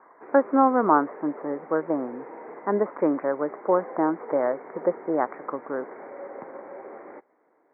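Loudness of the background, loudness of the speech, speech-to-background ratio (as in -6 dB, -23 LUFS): -41.5 LUFS, -25.5 LUFS, 16.0 dB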